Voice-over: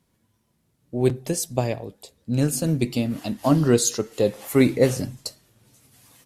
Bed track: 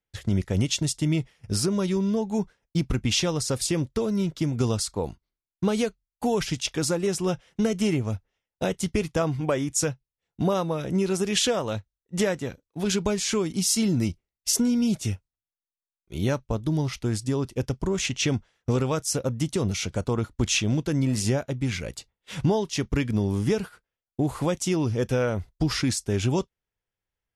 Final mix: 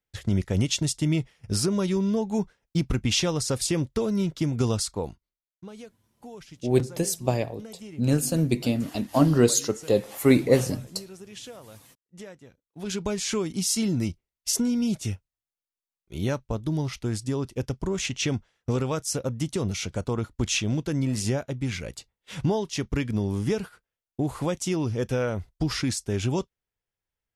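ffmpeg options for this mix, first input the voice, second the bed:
-filter_complex "[0:a]adelay=5700,volume=0.891[s0];[1:a]volume=6.68,afade=t=out:st=4.85:d=0.73:silence=0.11885,afade=t=in:st=12.56:d=0.64:silence=0.149624[s1];[s0][s1]amix=inputs=2:normalize=0"

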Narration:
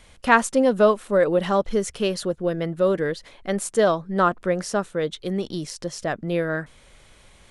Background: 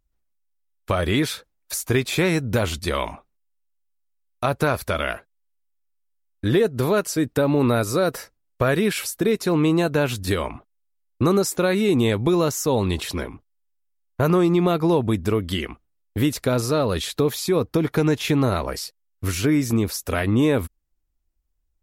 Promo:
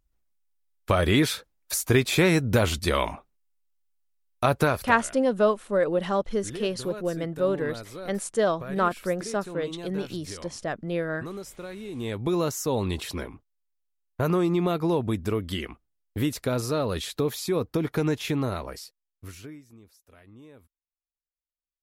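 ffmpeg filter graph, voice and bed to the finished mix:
-filter_complex "[0:a]adelay=4600,volume=0.596[s0];[1:a]volume=4.47,afade=t=out:st=4.58:d=0.41:silence=0.11885,afade=t=in:st=11.92:d=0.44:silence=0.223872,afade=t=out:st=18.1:d=1.53:silence=0.0530884[s1];[s0][s1]amix=inputs=2:normalize=0"

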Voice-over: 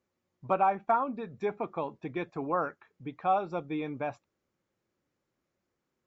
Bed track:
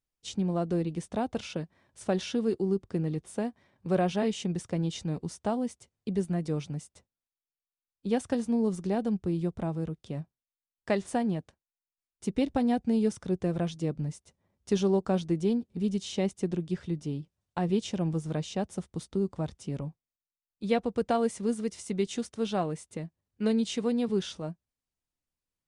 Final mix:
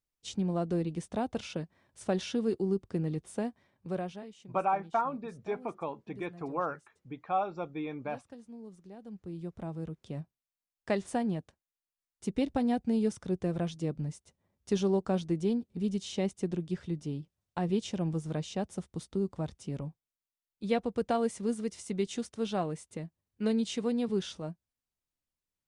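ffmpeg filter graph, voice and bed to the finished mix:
-filter_complex "[0:a]adelay=4050,volume=0.708[s0];[1:a]volume=5.96,afade=t=out:st=3.5:d=0.77:silence=0.125893,afade=t=in:st=9:d=1.26:silence=0.133352[s1];[s0][s1]amix=inputs=2:normalize=0"

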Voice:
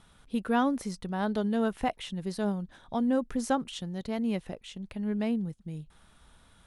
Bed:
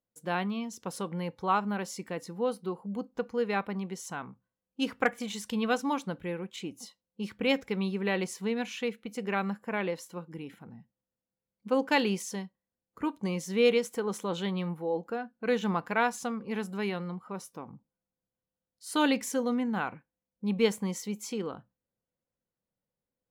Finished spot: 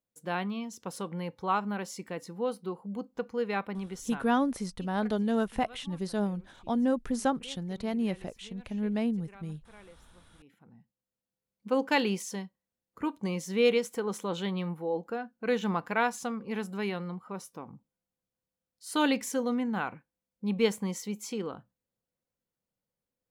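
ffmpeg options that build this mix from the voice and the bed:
-filter_complex "[0:a]adelay=3750,volume=1[s0];[1:a]volume=10,afade=t=out:st=4.1:d=0.25:silence=0.0944061,afade=t=in:st=10.37:d=1:silence=0.0841395[s1];[s0][s1]amix=inputs=2:normalize=0"

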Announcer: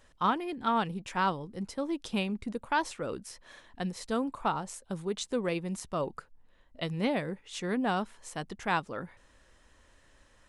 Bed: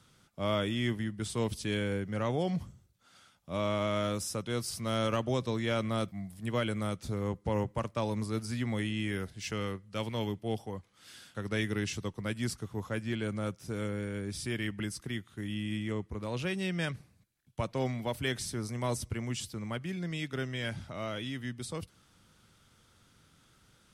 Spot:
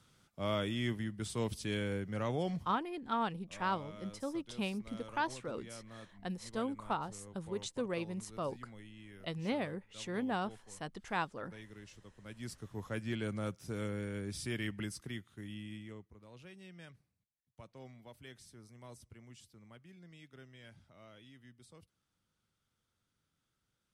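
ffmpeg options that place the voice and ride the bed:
-filter_complex "[0:a]adelay=2450,volume=0.501[s0];[1:a]volume=4.22,afade=t=out:st=2.46:d=0.36:silence=0.158489,afade=t=in:st=12.17:d=0.87:silence=0.149624,afade=t=out:st=14.69:d=1.47:silence=0.149624[s1];[s0][s1]amix=inputs=2:normalize=0"

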